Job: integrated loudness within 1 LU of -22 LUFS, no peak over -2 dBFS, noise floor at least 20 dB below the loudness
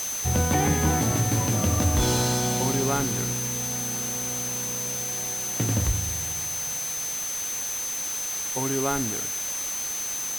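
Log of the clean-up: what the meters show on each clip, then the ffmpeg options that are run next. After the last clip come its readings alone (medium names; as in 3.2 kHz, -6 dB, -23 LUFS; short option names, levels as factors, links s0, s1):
steady tone 6.2 kHz; tone level -29 dBFS; noise floor -31 dBFS; noise floor target -45 dBFS; loudness -25.0 LUFS; peak level -11.0 dBFS; loudness target -22.0 LUFS
-> -af "bandreject=f=6200:w=30"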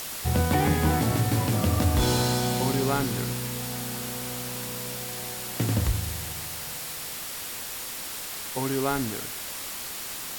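steady tone not found; noise floor -36 dBFS; noise floor target -48 dBFS
-> -af "afftdn=nr=12:nf=-36"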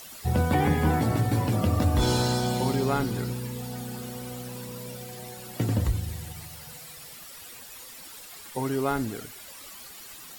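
noise floor -45 dBFS; noise floor target -48 dBFS
-> -af "afftdn=nr=6:nf=-45"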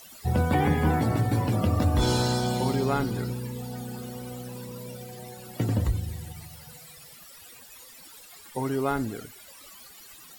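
noise floor -49 dBFS; loudness -27.5 LUFS; peak level -12.5 dBFS; loudness target -22.0 LUFS
-> -af "volume=1.88"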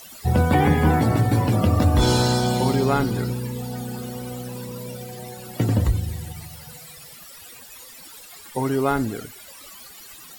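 loudness -22.0 LUFS; peak level -7.0 dBFS; noise floor -43 dBFS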